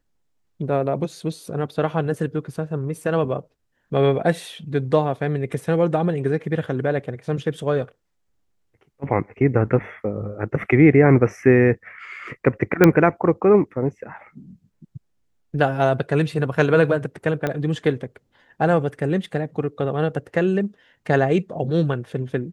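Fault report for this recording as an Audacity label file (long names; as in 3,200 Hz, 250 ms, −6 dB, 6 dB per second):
12.840000	12.840000	click −1 dBFS
17.470000	17.470000	click −11 dBFS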